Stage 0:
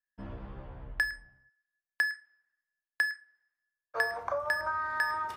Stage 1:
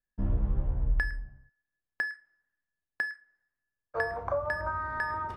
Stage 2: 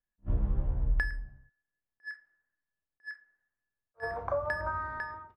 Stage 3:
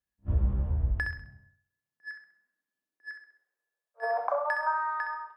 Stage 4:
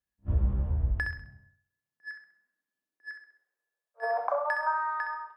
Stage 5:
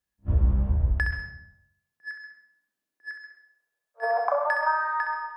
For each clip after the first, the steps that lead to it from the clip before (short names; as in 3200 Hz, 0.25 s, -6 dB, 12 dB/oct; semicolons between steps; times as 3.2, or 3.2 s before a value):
tilt -4 dB/oct
ending faded out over 0.59 s; low-pass opened by the level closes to 2000 Hz, open at -27.5 dBFS; attack slew limiter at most 530 dB/s; gain -1 dB
high-pass sweep 65 Hz -> 880 Hz, 0.87–4.56; on a send: flutter echo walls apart 11.2 m, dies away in 0.49 s
nothing audible
plate-style reverb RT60 0.52 s, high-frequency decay 0.7×, pre-delay 0.115 s, DRR 9.5 dB; gain +4 dB